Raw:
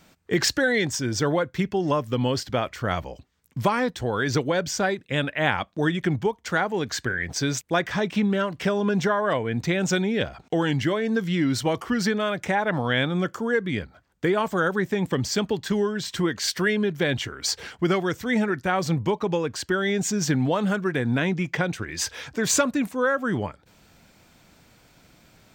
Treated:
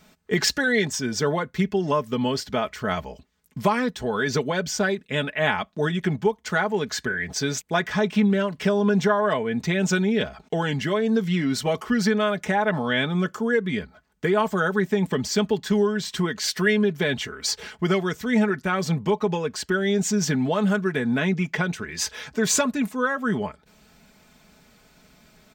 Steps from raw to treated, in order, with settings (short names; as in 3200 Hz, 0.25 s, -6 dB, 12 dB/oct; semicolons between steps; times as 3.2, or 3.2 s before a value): comb 4.7 ms, depth 63%; gain -1 dB